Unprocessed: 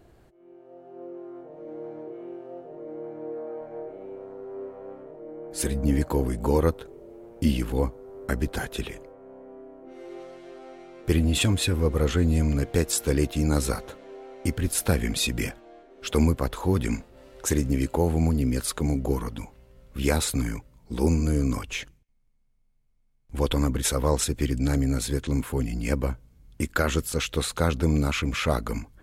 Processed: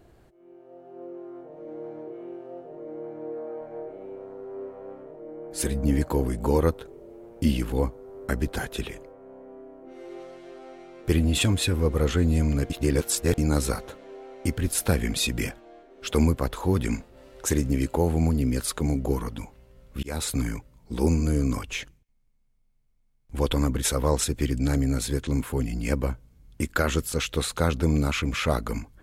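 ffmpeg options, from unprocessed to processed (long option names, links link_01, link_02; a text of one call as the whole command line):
ffmpeg -i in.wav -filter_complex "[0:a]asplit=4[link_01][link_02][link_03][link_04];[link_01]atrim=end=12.702[link_05];[link_02]atrim=start=12.698:end=13.382,asetpts=PTS-STARTPTS,areverse[link_06];[link_03]atrim=start=13.378:end=20.03,asetpts=PTS-STARTPTS,afade=type=out:start_time=6.648:duration=0.004:curve=hsin[link_07];[link_04]atrim=start=20.03,asetpts=PTS-STARTPTS,afade=type=in:duration=0.41:curve=qsin[link_08];[link_05][link_06]acrossfade=duration=0.004:curve1=hsin:curve2=hsin[link_09];[link_07][link_08]concat=n=2:v=0:a=1[link_10];[link_09][link_10]acrossfade=duration=0.004:curve1=hsin:curve2=hsin" out.wav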